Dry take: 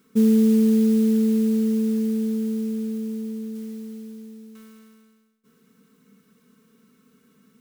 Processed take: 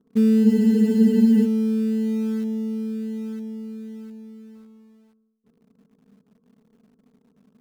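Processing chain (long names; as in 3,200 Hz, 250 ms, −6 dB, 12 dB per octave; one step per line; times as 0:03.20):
Bessel low-pass filter 600 Hz, order 6
in parallel at −11 dB: log-companded quantiser 4 bits
on the sum: frozen spectrum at 0:00.47, 0.97 s
level −2 dB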